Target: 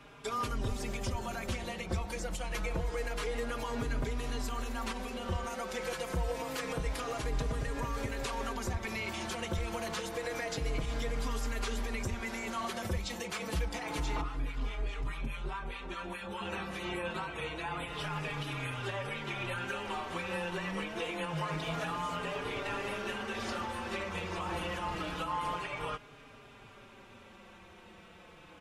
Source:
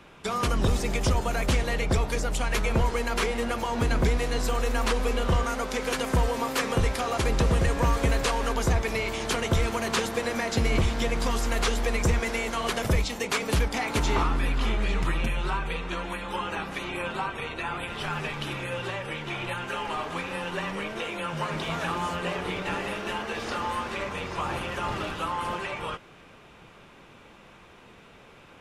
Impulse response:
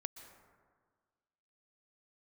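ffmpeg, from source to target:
-filter_complex "[0:a]alimiter=limit=-24dB:level=0:latency=1:release=149,asettb=1/sr,asplit=3[a][b][c];[a]atrim=end=14.214[d];[b]atrim=start=14.21:end=16.41,asetpts=PTS-STARTPTS,afade=t=in:d=0.004:c=qsin,afade=t=out:st=2.196:d=0.004:c=qsin,acrossover=split=880[e][f];[e]aeval=exprs='val(0)*(1-0.7/2+0.7/2*cos(2*PI*4.8*n/s))':c=same[g];[f]aeval=exprs='val(0)*(1-0.7/2-0.7/2*cos(2*PI*4.8*n/s))':c=same[h];[g][h]amix=inputs=2:normalize=0[i];[c]atrim=start=16.406[j];[d][i]acrossfade=d=0.004:c1=hsin:c2=qsin[k];[k][j]acrossfade=d=0.004:c1=qsin:c2=hsin,asplit=2[l][m];[m]adelay=4.4,afreqshift=-0.27[n];[l][n]amix=inputs=2:normalize=1"

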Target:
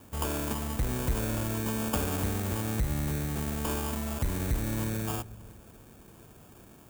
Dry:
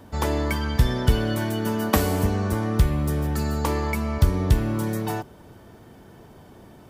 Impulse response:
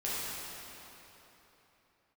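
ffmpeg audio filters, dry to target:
-filter_complex "[0:a]acrusher=samples=22:mix=1:aa=0.000001,asoftclip=type=tanh:threshold=-16.5dB,aexciter=amount=2:drive=8.2:freq=6.8k,asplit=2[a][b];[b]aemphasis=mode=reproduction:type=riaa[c];[1:a]atrim=start_sample=2205[d];[c][d]afir=irnorm=-1:irlink=0,volume=-30dB[e];[a][e]amix=inputs=2:normalize=0,volume=-7dB"

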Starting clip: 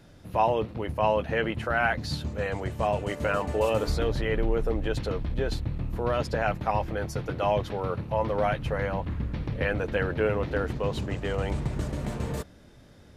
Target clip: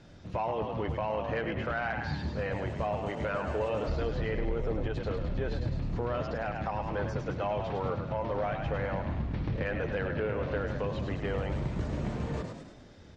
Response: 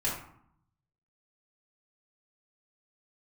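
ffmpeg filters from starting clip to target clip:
-filter_complex "[0:a]lowpass=f=7k:w=0.5412,lowpass=f=7k:w=1.3066,asplit=2[a][b];[b]asplit=6[c][d][e][f][g][h];[c]adelay=103,afreqshift=42,volume=-8.5dB[i];[d]adelay=206,afreqshift=84,volume=-14.7dB[j];[e]adelay=309,afreqshift=126,volume=-20.9dB[k];[f]adelay=412,afreqshift=168,volume=-27.1dB[l];[g]adelay=515,afreqshift=210,volume=-33.3dB[m];[h]adelay=618,afreqshift=252,volume=-39.5dB[n];[i][j][k][l][m][n]amix=inputs=6:normalize=0[o];[a][o]amix=inputs=2:normalize=0,alimiter=limit=-20dB:level=0:latency=1:release=291,acrossover=split=3100[p][q];[q]acompressor=threshold=-56dB:ratio=4:attack=1:release=60[r];[p][r]amix=inputs=2:normalize=0,asoftclip=type=tanh:threshold=-21dB" -ar 48000 -c:a libmp3lame -b:a 48k

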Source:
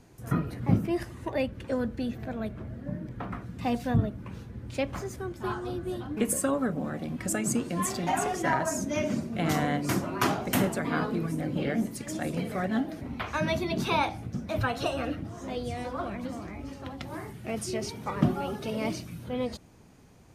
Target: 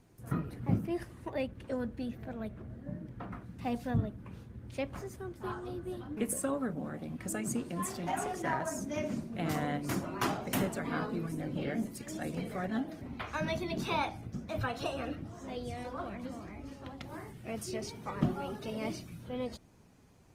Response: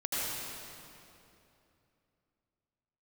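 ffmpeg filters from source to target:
-af "volume=-6dB" -ar 48000 -c:a libopus -b:a 24k

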